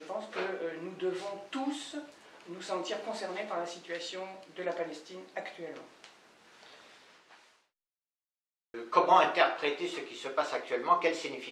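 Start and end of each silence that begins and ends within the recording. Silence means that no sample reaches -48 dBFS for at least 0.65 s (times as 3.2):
7.35–8.74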